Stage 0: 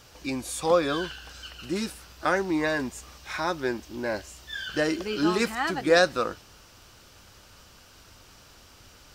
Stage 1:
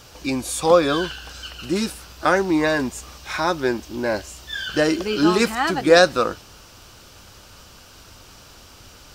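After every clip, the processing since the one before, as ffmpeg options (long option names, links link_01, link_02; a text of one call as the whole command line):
ffmpeg -i in.wav -af "equalizer=frequency=1900:width_type=o:width=0.47:gain=-3,volume=7dB" out.wav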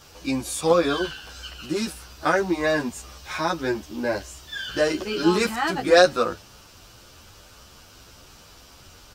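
ffmpeg -i in.wav -filter_complex "[0:a]asplit=2[link_01][link_02];[link_02]adelay=10.6,afreqshift=1.8[link_03];[link_01][link_03]amix=inputs=2:normalize=1" out.wav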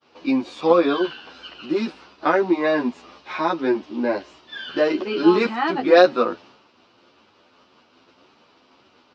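ffmpeg -i in.wav -af "highpass=240,equalizer=frequency=250:width_type=q:width=4:gain=7,equalizer=frequency=360:width_type=q:width=4:gain=4,equalizer=frequency=980:width_type=q:width=4:gain=3,equalizer=frequency=1600:width_type=q:width=4:gain=-4,equalizer=frequency=3300:width_type=q:width=4:gain=-3,lowpass=frequency=3900:width=0.5412,lowpass=frequency=3900:width=1.3066,agate=range=-33dB:threshold=-46dB:ratio=3:detection=peak,volume=2dB" out.wav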